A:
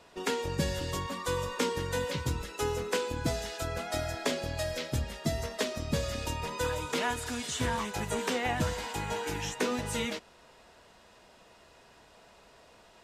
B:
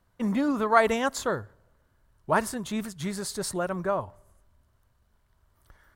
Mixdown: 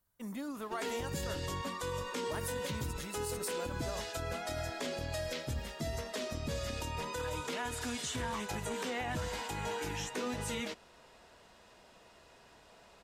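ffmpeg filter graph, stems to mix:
ffmpeg -i stem1.wav -i stem2.wav -filter_complex "[0:a]adelay=550,volume=-2dB[link_01];[1:a]aemphasis=mode=production:type=75fm,volume=-14.5dB[link_02];[link_01][link_02]amix=inputs=2:normalize=0,alimiter=level_in=4dB:limit=-24dB:level=0:latency=1:release=55,volume=-4dB" out.wav

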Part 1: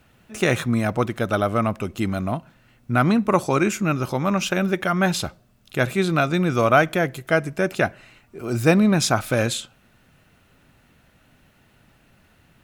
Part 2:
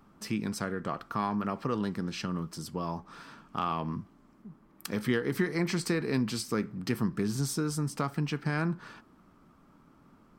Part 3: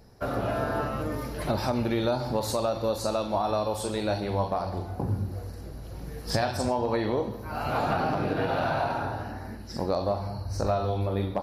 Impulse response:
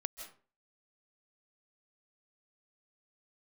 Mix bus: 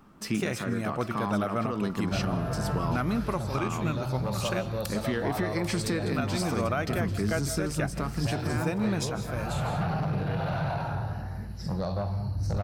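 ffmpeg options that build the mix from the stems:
-filter_complex "[0:a]volume=-10dB,asplit=3[link_01][link_02][link_03];[link_01]atrim=end=4.69,asetpts=PTS-STARTPTS,afade=type=out:start_time=4.686:duration=0.004:curve=hsin[link_04];[link_02]atrim=start=4.69:end=6.06,asetpts=PTS-STARTPTS,volume=0[link_05];[link_03]atrim=start=6.06,asetpts=PTS-STARTPTS,afade=type=in:duration=0.004:curve=hsin[link_06];[link_04][link_05][link_06]concat=n=3:v=0:a=1,asplit=2[link_07][link_08];[link_08]volume=-4.5dB[link_09];[1:a]alimiter=limit=-21dB:level=0:latency=1,volume=1.5dB,asplit=4[link_10][link_11][link_12][link_13];[link_11]volume=-8.5dB[link_14];[link_12]volume=-10dB[link_15];[2:a]lowshelf=frequency=210:width_type=q:width=3:gain=7,asoftclip=type=tanh:threshold=-19.5dB,adelay=1900,volume=-5.5dB,asplit=2[link_16][link_17];[link_17]volume=-9dB[link_18];[link_13]apad=whole_len=561504[link_19];[link_07][link_19]sidechaingate=range=-33dB:threshold=-52dB:ratio=16:detection=peak[link_20];[3:a]atrim=start_sample=2205[link_21];[link_09][link_14][link_18]amix=inputs=3:normalize=0[link_22];[link_22][link_21]afir=irnorm=-1:irlink=0[link_23];[link_15]aecho=0:1:791:1[link_24];[link_20][link_10][link_16][link_23][link_24]amix=inputs=5:normalize=0,alimiter=limit=-18dB:level=0:latency=1:release=342"

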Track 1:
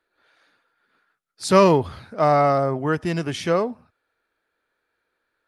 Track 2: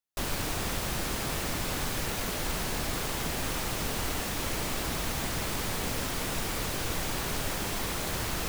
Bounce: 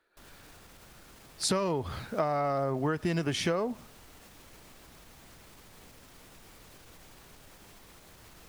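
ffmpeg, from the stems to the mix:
ffmpeg -i stem1.wav -i stem2.wav -filter_complex "[0:a]acompressor=threshold=-18dB:ratio=6,volume=1.5dB[link_01];[1:a]alimiter=level_in=4.5dB:limit=-24dB:level=0:latency=1:release=106,volume=-4.5dB,volume=-15.5dB[link_02];[link_01][link_02]amix=inputs=2:normalize=0,acompressor=threshold=-26dB:ratio=6" out.wav

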